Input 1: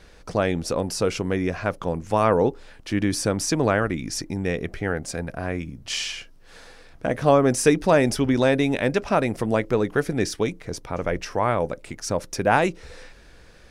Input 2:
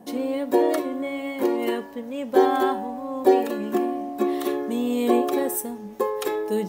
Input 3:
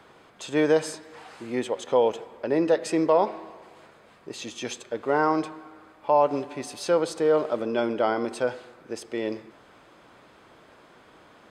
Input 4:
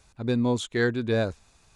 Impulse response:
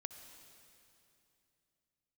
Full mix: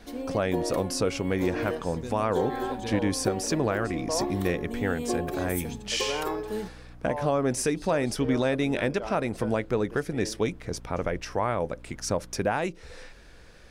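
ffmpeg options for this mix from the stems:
-filter_complex "[0:a]volume=0.841[s0];[1:a]volume=0.398[s1];[2:a]aeval=exprs='val(0)+0.0158*(sin(2*PI*60*n/s)+sin(2*PI*2*60*n/s)/2+sin(2*PI*3*60*n/s)/3+sin(2*PI*4*60*n/s)/4+sin(2*PI*5*60*n/s)/5)':c=same,adelay=1000,volume=0.299[s2];[3:a]alimiter=limit=0.112:level=0:latency=1,adelay=1750,volume=0.335[s3];[s0][s1][s2][s3]amix=inputs=4:normalize=0,alimiter=limit=0.178:level=0:latency=1:release=454"

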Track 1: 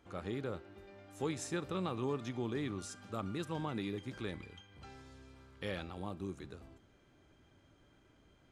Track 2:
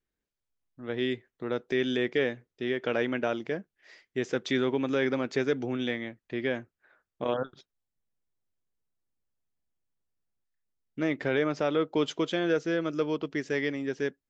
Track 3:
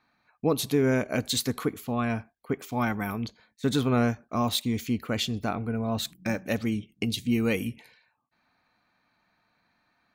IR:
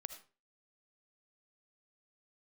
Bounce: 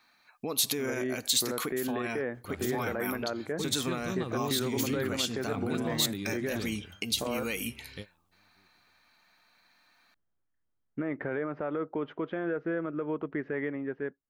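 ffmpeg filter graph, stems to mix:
-filter_complex "[0:a]lowshelf=f=470:g=12,adelay=2350,volume=0.447[s0];[1:a]lowpass=f=1600:w=0.5412,lowpass=f=1600:w=1.3066,dynaudnorm=f=130:g=11:m=2.51,alimiter=limit=0.2:level=0:latency=1:release=311,volume=0.531[s1];[2:a]alimiter=limit=0.0794:level=0:latency=1:release=212,highpass=f=310:p=1,volume=1.12,asplit=2[s2][s3];[s3]apad=whole_len=479173[s4];[s0][s4]sidechaingate=range=0.0224:threshold=0.001:ratio=16:detection=peak[s5];[s1][s2]amix=inputs=2:normalize=0,alimiter=level_in=1.06:limit=0.0631:level=0:latency=1:release=78,volume=0.944,volume=1[s6];[s5][s6]amix=inputs=2:normalize=0,highshelf=f=2300:g=12"

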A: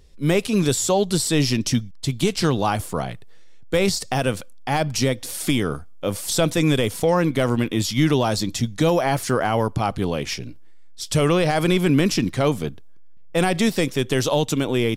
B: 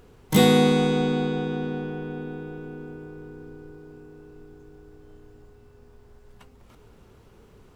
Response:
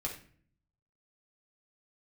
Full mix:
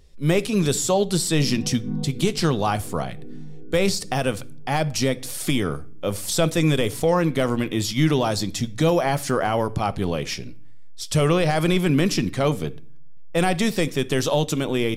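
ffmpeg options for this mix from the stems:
-filter_complex "[0:a]volume=0.75,asplit=3[s0][s1][s2];[s1]volume=0.224[s3];[1:a]bandpass=f=180:t=q:w=1.5:csg=0,asplit=2[s4][s5];[s5]afreqshift=-2.7[s6];[s4][s6]amix=inputs=2:normalize=1,adelay=1050,volume=1.19[s7];[s2]apad=whole_len=388446[s8];[s7][s8]sidechaincompress=threshold=0.0251:ratio=8:attack=16:release=145[s9];[2:a]atrim=start_sample=2205[s10];[s3][s10]afir=irnorm=-1:irlink=0[s11];[s0][s9][s11]amix=inputs=3:normalize=0"

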